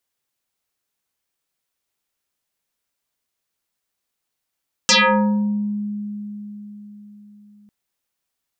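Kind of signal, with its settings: FM tone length 2.80 s, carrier 207 Hz, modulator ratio 3.53, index 10, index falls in 0.83 s exponential, decay 4.48 s, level -10 dB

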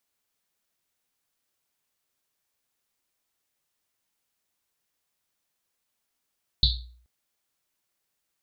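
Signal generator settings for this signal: Risset drum length 0.43 s, pitch 60 Hz, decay 0.60 s, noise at 4000 Hz, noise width 890 Hz, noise 50%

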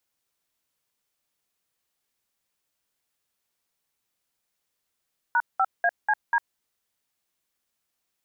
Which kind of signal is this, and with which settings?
DTMF "#5ACD", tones 52 ms, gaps 0.193 s, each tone -21 dBFS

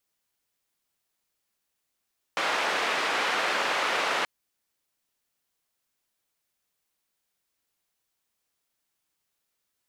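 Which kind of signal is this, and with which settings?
noise band 470–2100 Hz, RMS -27 dBFS 1.88 s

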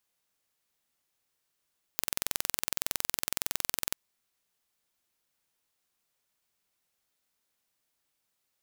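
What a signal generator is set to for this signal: pulse train 21.7/s, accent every 0, -1.5 dBFS 1.95 s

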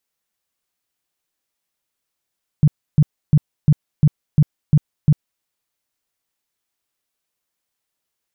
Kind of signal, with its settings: tone bursts 150 Hz, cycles 7, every 0.35 s, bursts 8, -7 dBFS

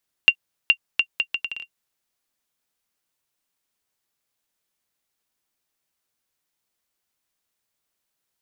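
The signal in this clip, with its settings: bouncing ball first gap 0.42 s, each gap 0.7, 2770 Hz, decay 71 ms -1.5 dBFS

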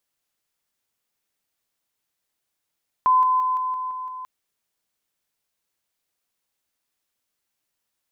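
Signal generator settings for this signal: level ladder 1020 Hz -13.5 dBFS, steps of -3 dB, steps 7, 0.17 s 0.00 s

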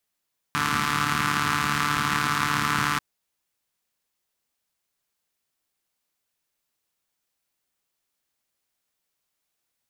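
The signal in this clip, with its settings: four-cylinder engine model, steady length 2.44 s, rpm 4400, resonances 120/200/1200 Hz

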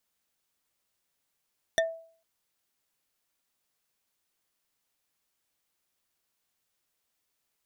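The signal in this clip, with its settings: wood hit bar, lowest mode 656 Hz, decay 0.49 s, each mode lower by 2 dB, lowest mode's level -20 dB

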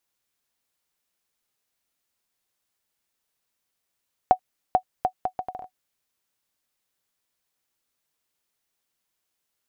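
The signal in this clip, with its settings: bouncing ball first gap 0.44 s, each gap 0.68, 742 Hz, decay 82 ms -5 dBFS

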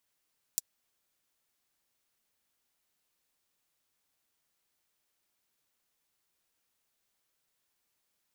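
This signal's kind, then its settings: closed hi-hat, high-pass 6100 Hz, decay 0.03 s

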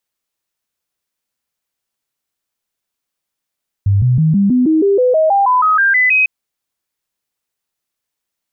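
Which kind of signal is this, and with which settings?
stepped sine 99.5 Hz up, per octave 3, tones 15, 0.16 s, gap 0.00 s -8.5 dBFS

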